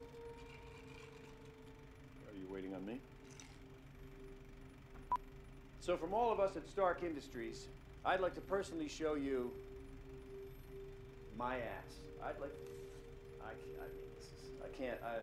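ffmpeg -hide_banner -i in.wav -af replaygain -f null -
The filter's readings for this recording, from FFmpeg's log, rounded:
track_gain = +22.7 dB
track_peak = 0.052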